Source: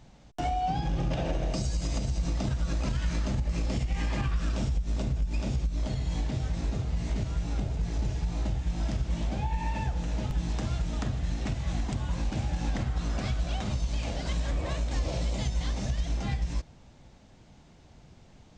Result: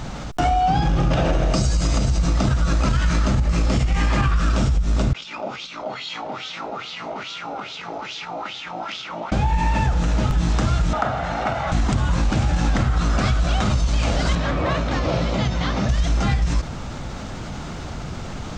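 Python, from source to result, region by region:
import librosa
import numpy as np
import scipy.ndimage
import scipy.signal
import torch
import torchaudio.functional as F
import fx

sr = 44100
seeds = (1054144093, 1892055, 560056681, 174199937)

y = fx.chain(x, sr, fx.wah_lfo(hz=2.4, low_hz=660.0, high_hz=3700.0, q=3.8),
    fx.cabinet(low_hz=180.0, low_slope=12, high_hz=7200.0, hz=(660.0, 1100.0, 1700.0), db=(-4, -4, -9)), at=(5.13, 9.32))
y = fx.chain(y, sr, fx.bandpass_q(hz=1000.0, q=0.7),
    fx.peak_eq(hz=750.0, db=6.0, octaves=0.77),
    fx.comb(ms=1.4, depth=0.31), at=(10.93, 11.72))
y = fx.chain(y, sr, fx.highpass(hz=100.0, slope=12),
    fx.air_absorb(metres=150.0), at=(14.35, 15.89))
y = fx.peak_eq(y, sr, hz=1300.0, db=9.0, octaves=0.46)
y = fx.env_flatten(y, sr, amount_pct=50)
y = y * 10.0 ** (8.0 / 20.0)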